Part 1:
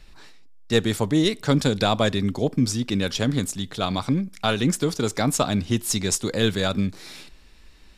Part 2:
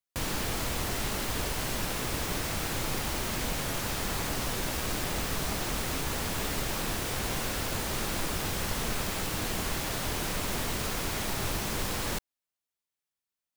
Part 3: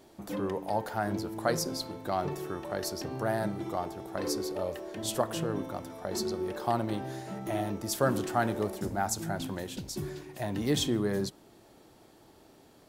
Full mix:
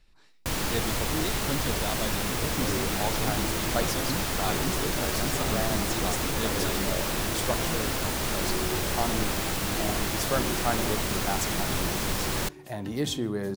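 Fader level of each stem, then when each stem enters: −13.0, +3.0, −1.0 decibels; 0.00, 0.30, 2.30 seconds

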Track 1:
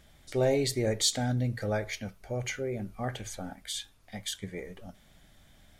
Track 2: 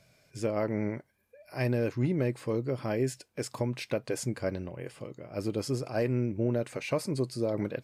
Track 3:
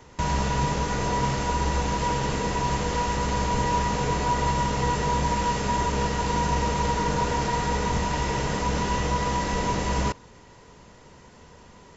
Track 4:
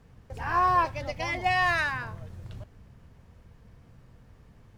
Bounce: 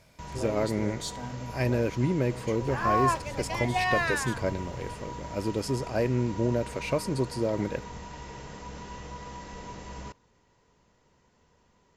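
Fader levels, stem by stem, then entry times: −10.5, +2.0, −16.0, −2.5 decibels; 0.00, 0.00, 0.00, 2.30 seconds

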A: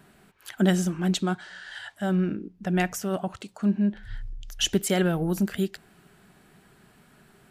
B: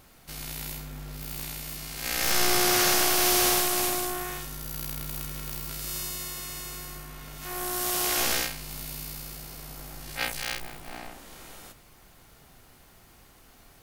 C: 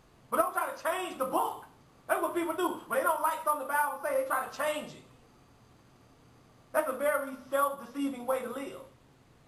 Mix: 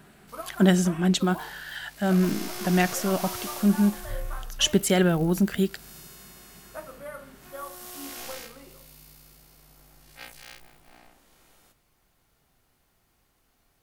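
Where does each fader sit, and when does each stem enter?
+2.5, −13.5, −11.5 decibels; 0.00, 0.00, 0.00 seconds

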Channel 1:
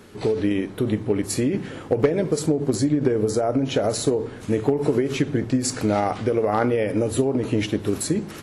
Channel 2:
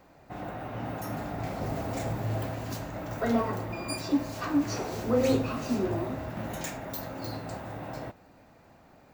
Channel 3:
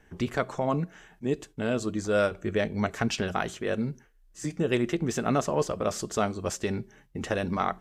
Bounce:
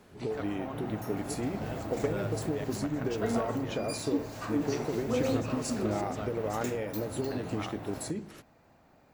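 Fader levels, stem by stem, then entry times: −12.5, −5.0, −14.5 decibels; 0.00, 0.00, 0.00 seconds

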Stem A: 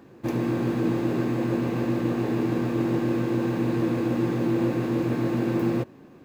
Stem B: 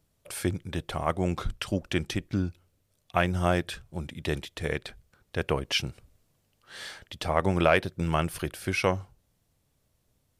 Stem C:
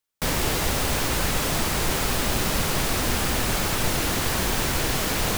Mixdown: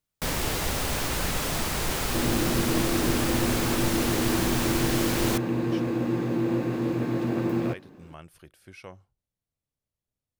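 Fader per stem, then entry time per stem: −2.0, −19.0, −4.0 decibels; 1.90, 0.00, 0.00 seconds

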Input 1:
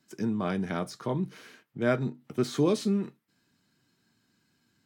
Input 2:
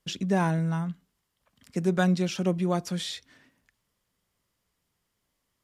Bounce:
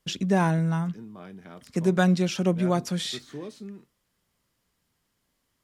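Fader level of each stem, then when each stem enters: −13.5, +2.5 decibels; 0.75, 0.00 seconds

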